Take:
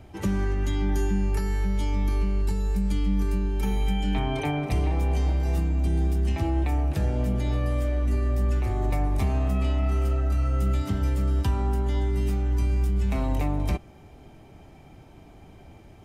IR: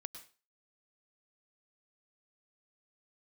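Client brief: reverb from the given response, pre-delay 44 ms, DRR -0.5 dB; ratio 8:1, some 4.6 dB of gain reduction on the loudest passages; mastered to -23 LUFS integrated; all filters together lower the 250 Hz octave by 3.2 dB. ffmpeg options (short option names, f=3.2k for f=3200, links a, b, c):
-filter_complex "[0:a]equalizer=f=250:t=o:g=-4.5,acompressor=threshold=-25dB:ratio=8,asplit=2[a][b];[1:a]atrim=start_sample=2205,adelay=44[c];[b][c]afir=irnorm=-1:irlink=0,volume=4dB[d];[a][d]amix=inputs=2:normalize=0,volume=3.5dB"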